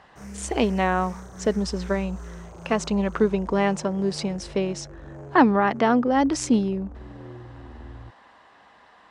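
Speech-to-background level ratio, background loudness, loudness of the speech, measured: 17.5 dB, -41.0 LUFS, -23.5 LUFS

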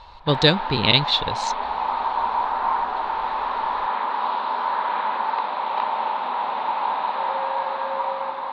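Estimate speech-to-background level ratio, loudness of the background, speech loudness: 5.5 dB, -25.0 LUFS, -19.5 LUFS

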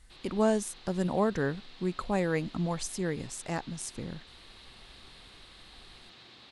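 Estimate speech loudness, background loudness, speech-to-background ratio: -32.0 LUFS, -51.5 LUFS, 19.5 dB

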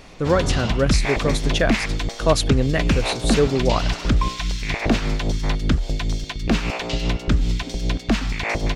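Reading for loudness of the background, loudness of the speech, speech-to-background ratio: -23.5 LUFS, -22.5 LUFS, 1.0 dB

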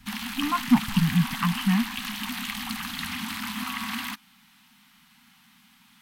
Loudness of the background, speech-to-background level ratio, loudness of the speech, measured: -31.5 LUFS, 6.5 dB, -25.0 LUFS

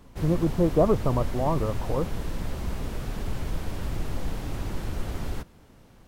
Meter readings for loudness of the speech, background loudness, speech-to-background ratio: -26.0 LUFS, -34.5 LUFS, 8.5 dB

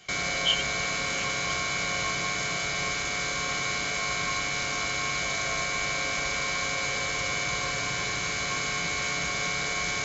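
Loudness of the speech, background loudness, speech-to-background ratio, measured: -31.0 LUFS, -27.5 LUFS, -3.5 dB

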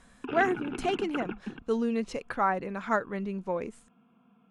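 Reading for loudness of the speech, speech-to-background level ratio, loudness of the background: -31.0 LUFS, 7.5 dB, -38.5 LUFS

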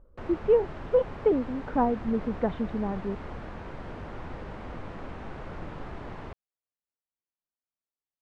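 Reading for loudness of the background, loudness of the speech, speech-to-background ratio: -41.0 LUFS, -28.0 LUFS, 13.0 dB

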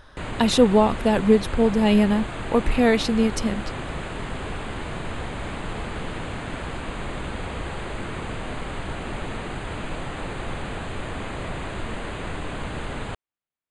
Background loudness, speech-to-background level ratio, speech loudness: -32.5 LUFS, 12.0 dB, -20.5 LUFS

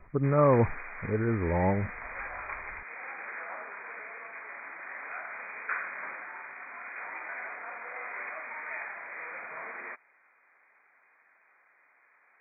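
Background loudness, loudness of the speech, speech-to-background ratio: -39.0 LUFS, -27.0 LUFS, 12.0 dB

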